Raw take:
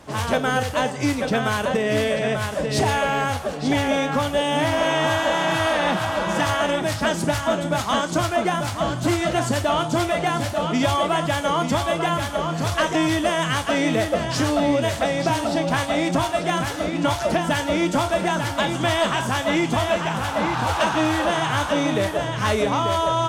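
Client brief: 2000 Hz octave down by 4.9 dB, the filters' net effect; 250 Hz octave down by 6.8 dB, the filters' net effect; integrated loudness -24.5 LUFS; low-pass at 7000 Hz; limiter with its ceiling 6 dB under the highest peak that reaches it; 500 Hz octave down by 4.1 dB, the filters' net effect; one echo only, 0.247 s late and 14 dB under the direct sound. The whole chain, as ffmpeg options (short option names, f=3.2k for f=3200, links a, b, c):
-af "lowpass=7k,equalizer=f=250:t=o:g=-8,equalizer=f=500:t=o:g=-3.5,equalizer=f=2k:t=o:g=-6,alimiter=limit=-19dB:level=0:latency=1,aecho=1:1:247:0.2,volume=3dB"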